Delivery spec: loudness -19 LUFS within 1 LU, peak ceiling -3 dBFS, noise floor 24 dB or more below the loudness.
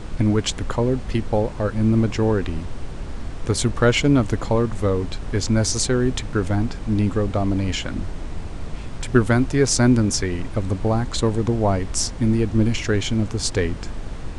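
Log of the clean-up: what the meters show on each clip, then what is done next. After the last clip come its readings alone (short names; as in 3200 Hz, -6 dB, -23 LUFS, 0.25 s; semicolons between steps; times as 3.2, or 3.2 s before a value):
noise floor -31 dBFS; noise floor target -46 dBFS; loudness -21.5 LUFS; peak -3.0 dBFS; loudness target -19.0 LUFS
-> noise print and reduce 15 dB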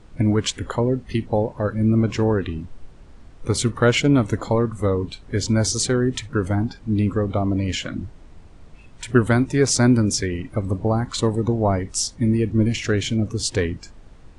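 noise floor -45 dBFS; noise floor target -46 dBFS
-> noise print and reduce 6 dB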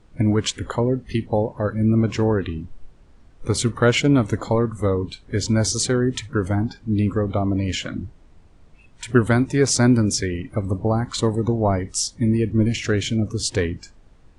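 noise floor -51 dBFS; loudness -21.5 LUFS; peak -2.5 dBFS; loudness target -19.0 LUFS
-> gain +2.5 dB; limiter -3 dBFS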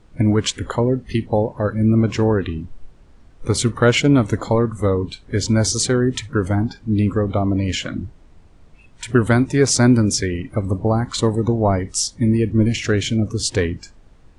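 loudness -19.0 LUFS; peak -3.0 dBFS; noise floor -48 dBFS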